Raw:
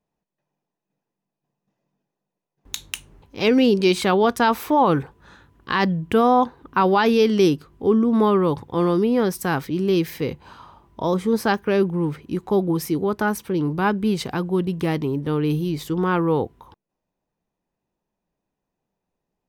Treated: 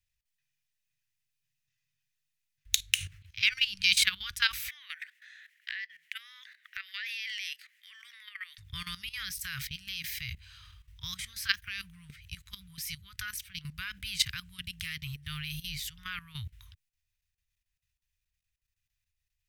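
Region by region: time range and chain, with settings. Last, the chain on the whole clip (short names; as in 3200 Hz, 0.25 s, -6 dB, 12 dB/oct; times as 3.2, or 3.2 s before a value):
2.9–3.83 HPF 81 Hz 24 dB/oct + high shelf 4900 Hz -6.5 dB + sustainer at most 91 dB/s
4.68–8.58 resonant high-pass 1900 Hz, resonance Q 5.8 + compressor 4:1, threshold -35 dBFS
whole clip: inverse Chebyshev band-stop 240–780 Hz, stop band 60 dB; level quantiser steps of 15 dB; gain +7 dB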